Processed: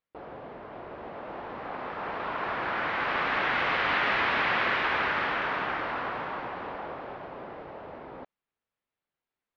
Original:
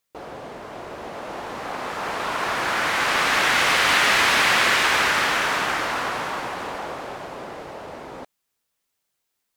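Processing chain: Gaussian low-pass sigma 2.8 samples; trim -5.5 dB

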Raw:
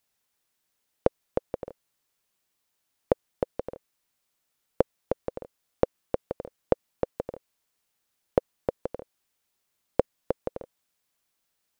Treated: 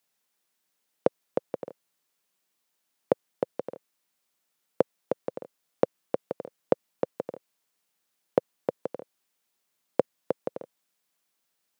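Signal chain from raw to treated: high-pass 140 Hz 24 dB/octave

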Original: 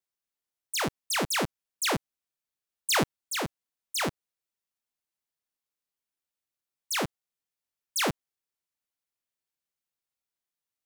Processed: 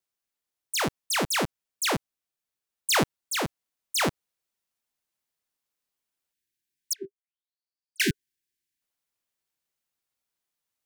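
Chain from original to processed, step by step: gain riding 2 s; 6.93–8.00 s: auto-wah 390–4800 Hz, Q 11, down, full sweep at -24.5 dBFS; 6.33–8.82 s: spectral selection erased 410–1500 Hz; trim +2 dB

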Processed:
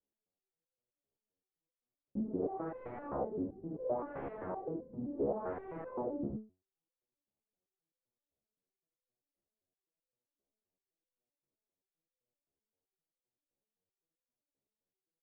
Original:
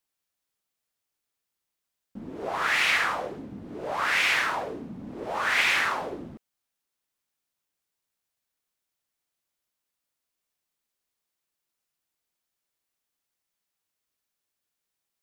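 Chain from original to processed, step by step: hard clipper -20.5 dBFS, distortion -14 dB; four-pole ladder low-pass 650 Hz, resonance 25%; resonator arpeggio 7.7 Hz 69–510 Hz; trim +16 dB

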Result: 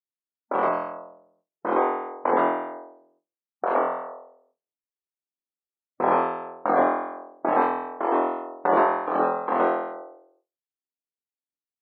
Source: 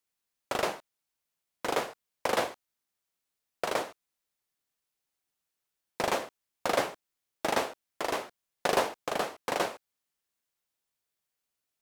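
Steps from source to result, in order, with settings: flutter echo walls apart 4 m, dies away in 0.95 s; gate with hold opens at -55 dBFS; dynamic bell 540 Hz, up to -5 dB, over -39 dBFS, Q 1.2; spectral gate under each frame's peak -15 dB strong; level-controlled noise filter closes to 360 Hz, open at -28 dBFS; Chebyshev band-pass 260–1100 Hz, order 2; trim +8.5 dB

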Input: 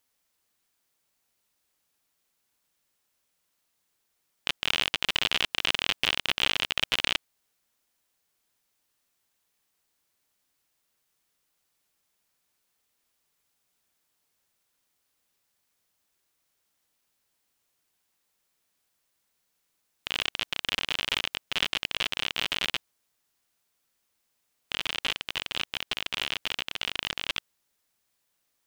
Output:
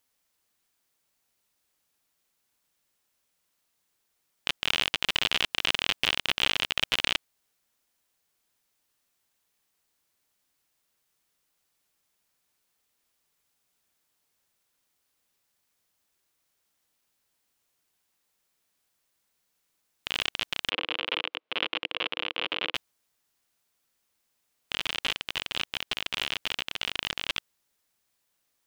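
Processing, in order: 20.70–22.75 s: cabinet simulation 250–3300 Hz, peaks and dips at 320 Hz +6 dB, 490 Hz +8 dB, 1.1 kHz +3 dB, 1.8 kHz -4 dB

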